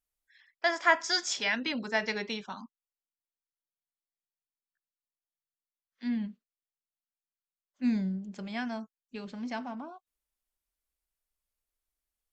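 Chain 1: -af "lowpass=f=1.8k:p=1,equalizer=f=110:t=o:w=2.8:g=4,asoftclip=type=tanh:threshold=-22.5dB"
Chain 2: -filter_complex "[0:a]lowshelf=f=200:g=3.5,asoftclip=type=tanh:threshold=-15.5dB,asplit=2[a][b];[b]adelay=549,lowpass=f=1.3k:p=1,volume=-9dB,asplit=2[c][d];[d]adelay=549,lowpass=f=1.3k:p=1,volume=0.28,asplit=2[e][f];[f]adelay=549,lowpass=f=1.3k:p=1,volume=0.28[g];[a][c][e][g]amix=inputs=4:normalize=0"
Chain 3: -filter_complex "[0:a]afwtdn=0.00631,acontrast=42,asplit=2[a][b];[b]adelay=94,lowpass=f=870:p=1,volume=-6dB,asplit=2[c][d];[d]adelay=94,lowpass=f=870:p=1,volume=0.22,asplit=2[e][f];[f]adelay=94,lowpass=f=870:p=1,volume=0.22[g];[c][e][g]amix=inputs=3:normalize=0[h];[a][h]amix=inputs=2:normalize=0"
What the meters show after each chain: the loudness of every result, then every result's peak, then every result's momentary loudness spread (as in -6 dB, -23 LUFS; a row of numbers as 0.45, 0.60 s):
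-34.5, -32.5, -25.5 LUFS; -22.5, -15.5, -5.0 dBFS; 12, 18, 17 LU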